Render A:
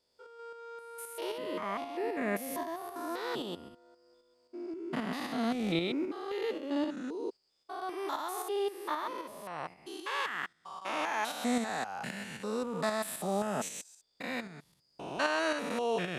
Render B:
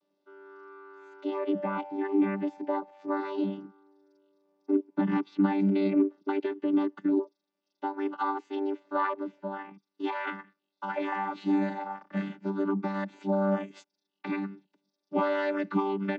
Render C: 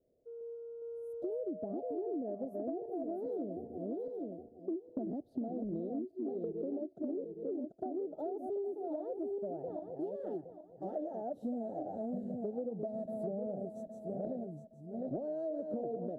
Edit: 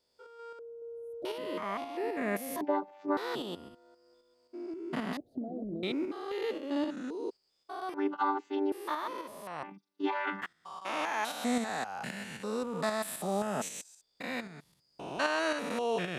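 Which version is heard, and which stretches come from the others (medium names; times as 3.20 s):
A
0.59–1.25 s: from C
2.61–3.17 s: from B
5.17–5.83 s: from C
7.94–8.72 s: from B
9.63–10.42 s: from B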